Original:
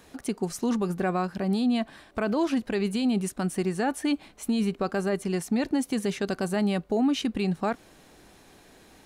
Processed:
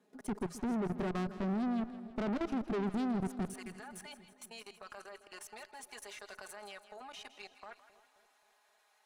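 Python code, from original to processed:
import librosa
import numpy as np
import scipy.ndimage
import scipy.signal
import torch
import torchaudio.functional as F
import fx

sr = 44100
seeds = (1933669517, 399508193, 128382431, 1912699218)

y = fx.highpass(x, sr, hz=fx.steps((0.0, 190.0), (3.45, 810.0)), slope=24)
y = fx.tilt_shelf(y, sr, db=6.5, hz=970.0)
y = y + 0.82 * np.pad(y, (int(4.8 * sr / 1000.0), 0))[:len(y)]
y = fx.dynamic_eq(y, sr, hz=760.0, q=4.5, threshold_db=-46.0, ratio=4.0, max_db=-7)
y = fx.level_steps(y, sr, step_db=23)
y = fx.tube_stage(y, sr, drive_db=32.0, bias=0.6)
y = fx.echo_split(y, sr, split_hz=660.0, low_ms=264, high_ms=162, feedback_pct=52, wet_db=-13.5)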